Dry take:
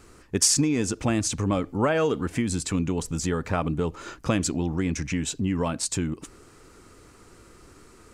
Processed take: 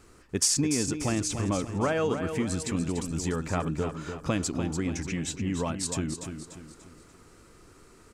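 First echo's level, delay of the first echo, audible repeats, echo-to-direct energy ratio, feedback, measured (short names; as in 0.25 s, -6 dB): -8.0 dB, 0.292 s, 4, -7.0 dB, 41%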